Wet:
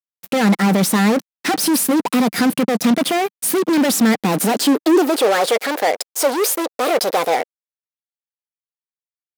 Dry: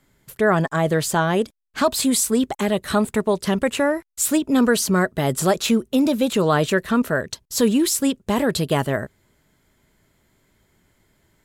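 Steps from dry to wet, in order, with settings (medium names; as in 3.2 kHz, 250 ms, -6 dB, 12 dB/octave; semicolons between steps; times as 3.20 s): wide varispeed 1.22×; fuzz box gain 29 dB, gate -37 dBFS; high-pass sweep 200 Hz -> 510 Hz, 4.20–5.42 s; trim -3.5 dB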